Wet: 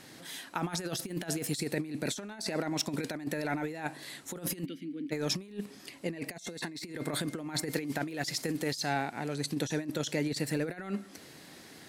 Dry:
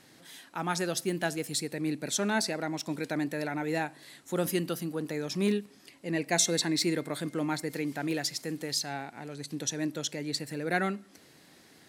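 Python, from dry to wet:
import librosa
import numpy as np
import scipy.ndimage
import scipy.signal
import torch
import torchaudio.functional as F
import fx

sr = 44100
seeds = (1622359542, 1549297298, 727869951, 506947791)

y = fx.vowel_filter(x, sr, vowel='i', at=(4.64, 5.11), fade=0.02)
y = fx.over_compress(y, sr, threshold_db=-35.0, ratio=-0.5)
y = F.gain(torch.from_numpy(y), 1.5).numpy()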